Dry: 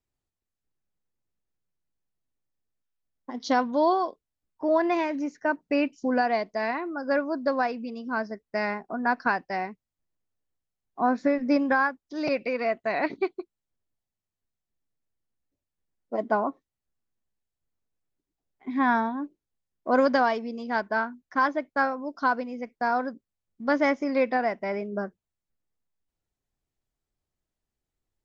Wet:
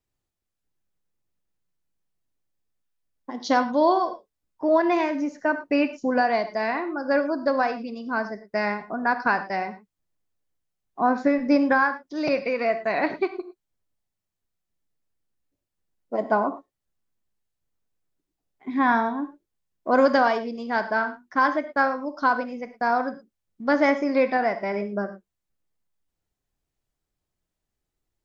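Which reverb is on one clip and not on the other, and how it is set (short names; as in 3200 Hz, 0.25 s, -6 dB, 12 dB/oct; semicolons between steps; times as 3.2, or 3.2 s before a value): non-linear reverb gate 0.13 s flat, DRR 9.5 dB; gain +2.5 dB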